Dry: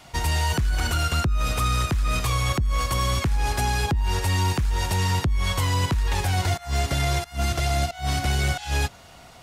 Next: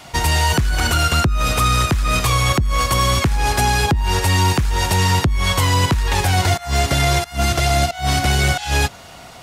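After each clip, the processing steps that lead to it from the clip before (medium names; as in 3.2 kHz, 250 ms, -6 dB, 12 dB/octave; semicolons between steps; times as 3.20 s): bass shelf 71 Hz -7 dB; trim +8.5 dB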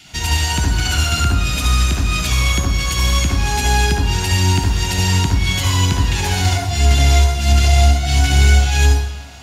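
reverberation RT60 1.0 s, pre-delay 60 ms, DRR 0.5 dB; trim -6 dB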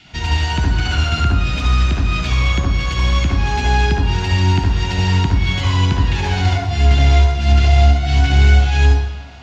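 distance through air 180 m; trim +1 dB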